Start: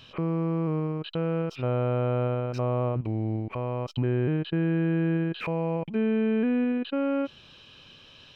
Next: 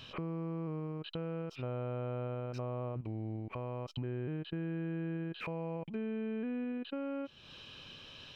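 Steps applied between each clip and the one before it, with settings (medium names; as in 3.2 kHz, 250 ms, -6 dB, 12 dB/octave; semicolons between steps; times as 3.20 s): compression 2.5:1, threshold -42 dBFS, peak gain reduction 13 dB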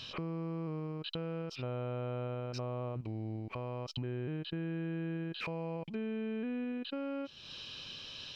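peaking EQ 4.9 kHz +11.5 dB 1.1 oct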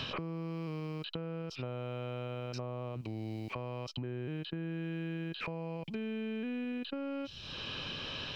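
three bands compressed up and down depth 100%; trim -1.5 dB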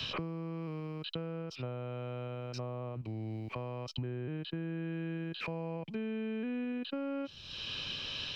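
three bands expanded up and down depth 100%; trim +1 dB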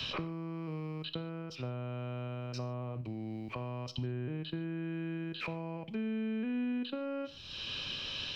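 gated-style reverb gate 170 ms falling, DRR 11.5 dB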